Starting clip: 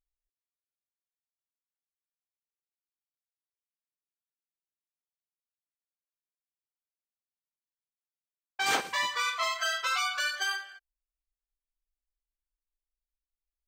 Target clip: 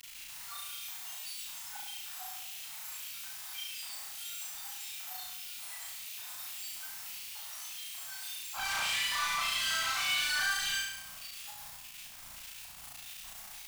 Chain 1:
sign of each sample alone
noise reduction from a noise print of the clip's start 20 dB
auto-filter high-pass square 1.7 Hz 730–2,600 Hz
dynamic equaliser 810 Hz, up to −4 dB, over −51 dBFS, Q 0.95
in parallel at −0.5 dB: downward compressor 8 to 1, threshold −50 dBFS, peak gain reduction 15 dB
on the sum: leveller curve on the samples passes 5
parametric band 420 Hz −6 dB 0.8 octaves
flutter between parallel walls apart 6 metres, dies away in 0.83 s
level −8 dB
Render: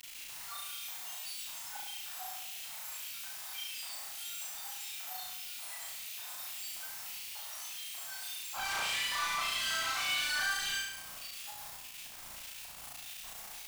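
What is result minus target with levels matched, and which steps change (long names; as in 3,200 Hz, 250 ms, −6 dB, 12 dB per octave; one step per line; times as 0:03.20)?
downward compressor: peak gain reduction +8 dB; 500 Hz band +4.0 dB
change: downward compressor 8 to 1, threshold −41 dBFS, peak gain reduction 7 dB
change: parametric band 420 Hz −18 dB 0.8 octaves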